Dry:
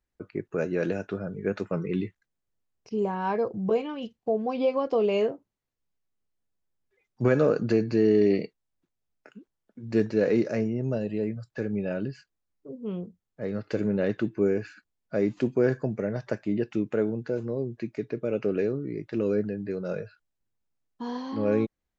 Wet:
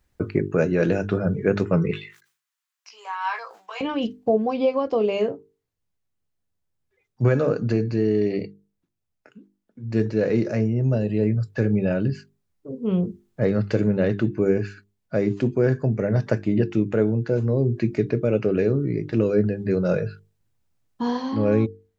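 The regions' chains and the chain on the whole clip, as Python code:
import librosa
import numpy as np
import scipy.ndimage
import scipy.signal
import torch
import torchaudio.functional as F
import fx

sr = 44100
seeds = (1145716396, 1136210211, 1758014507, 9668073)

y = fx.chain(x, sr, fx.highpass(hz=1100.0, slope=24),
    fx.doubler(ms=17.0, db=-6),
    fx.sustainer(db_per_s=130.0), at=(1.91, 3.81))
y = fx.peak_eq(y, sr, hz=100.0, db=9.5, octaves=1.3)
y = fx.hum_notches(y, sr, base_hz=50, count=9)
y = fx.rider(y, sr, range_db=10, speed_s=0.5)
y = y * 10.0 ** (4.5 / 20.0)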